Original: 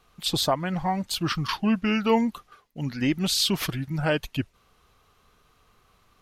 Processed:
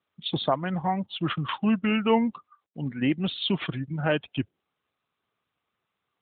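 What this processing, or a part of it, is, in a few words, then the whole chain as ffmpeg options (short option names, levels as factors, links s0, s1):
mobile call with aggressive noise cancelling: -af "highpass=110,afftdn=nr=27:nf=-42" -ar 8000 -c:a libopencore_amrnb -b:a 12200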